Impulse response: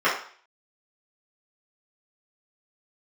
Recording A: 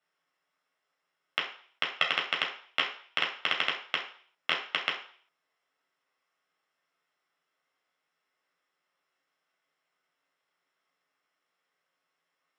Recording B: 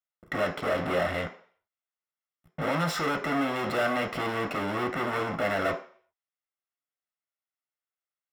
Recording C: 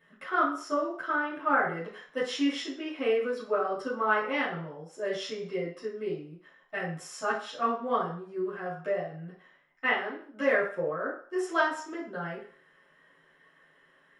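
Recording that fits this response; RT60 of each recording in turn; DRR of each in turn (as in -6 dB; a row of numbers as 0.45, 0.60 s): C; 0.50, 0.50, 0.50 s; -2.0, 4.0, -11.5 dB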